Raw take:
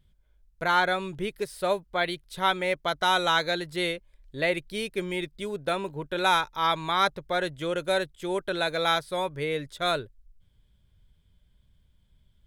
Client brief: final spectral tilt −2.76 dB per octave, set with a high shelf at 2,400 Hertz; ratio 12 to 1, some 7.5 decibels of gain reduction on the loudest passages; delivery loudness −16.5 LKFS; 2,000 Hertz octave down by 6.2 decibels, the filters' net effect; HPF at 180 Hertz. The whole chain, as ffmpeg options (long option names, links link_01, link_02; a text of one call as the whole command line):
ffmpeg -i in.wav -af "highpass=180,equalizer=frequency=2000:width_type=o:gain=-7.5,highshelf=frequency=2400:gain=-3.5,acompressor=threshold=-28dB:ratio=12,volume=18dB" out.wav